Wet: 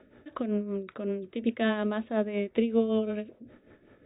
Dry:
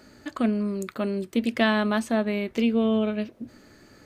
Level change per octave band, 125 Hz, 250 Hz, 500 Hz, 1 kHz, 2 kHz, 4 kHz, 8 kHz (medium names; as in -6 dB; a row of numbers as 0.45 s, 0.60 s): no reading, -5.5 dB, -2.0 dB, -7.5 dB, -8.5 dB, -9.0 dB, under -35 dB